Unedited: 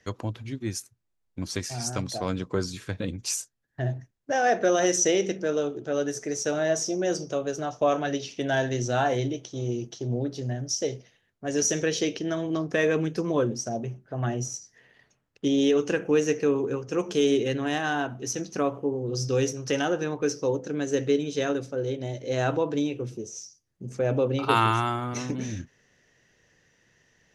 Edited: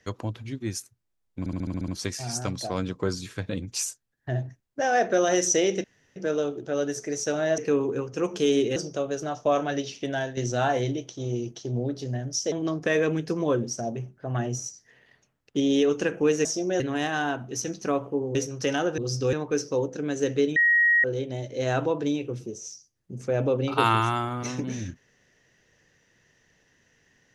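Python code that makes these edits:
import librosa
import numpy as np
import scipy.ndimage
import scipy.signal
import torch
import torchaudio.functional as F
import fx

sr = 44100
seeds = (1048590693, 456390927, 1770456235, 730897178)

y = fx.edit(x, sr, fx.stutter(start_s=1.39, slice_s=0.07, count=8),
    fx.insert_room_tone(at_s=5.35, length_s=0.32),
    fx.swap(start_s=6.77, length_s=0.35, other_s=16.33, other_length_s=1.18),
    fx.fade_out_to(start_s=8.37, length_s=0.36, floor_db=-11.0),
    fx.cut(start_s=10.88, length_s=1.52),
    fx.move(start_s=19.06, length_s=0.35, to_s=20.04),
    fx.bleep(start_s=21.27, length_s=0.48, hz=1890.0, db=-16.5), tone=tone)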